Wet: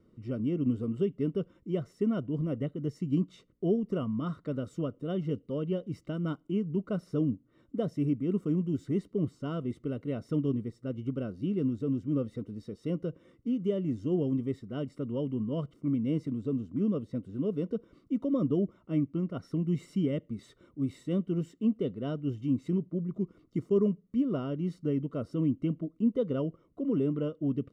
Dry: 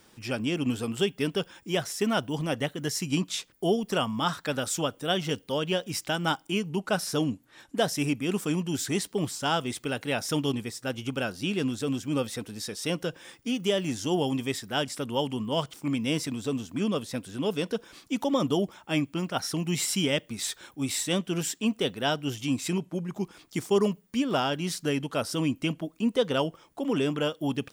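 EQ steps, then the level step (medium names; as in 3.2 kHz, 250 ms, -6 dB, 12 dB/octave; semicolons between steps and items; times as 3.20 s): boxcar filter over 53 samples; +1.0 dB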